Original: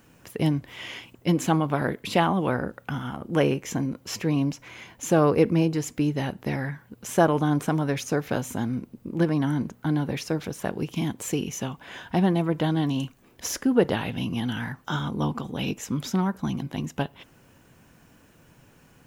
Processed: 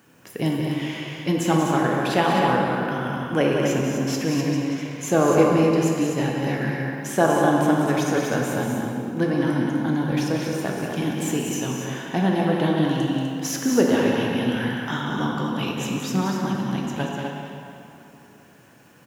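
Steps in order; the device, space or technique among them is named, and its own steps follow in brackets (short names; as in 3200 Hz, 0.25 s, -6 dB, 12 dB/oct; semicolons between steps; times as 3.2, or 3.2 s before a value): stadium PA (HPF 140 Hz; bell 1700 Hz +3 dB 0.22 oct; loudspeakers at several distances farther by 63 m -7 dB, 86 m -6 dB; reverb RT60 2.8 s, pre-delay 6 ms, DRR 0 dB)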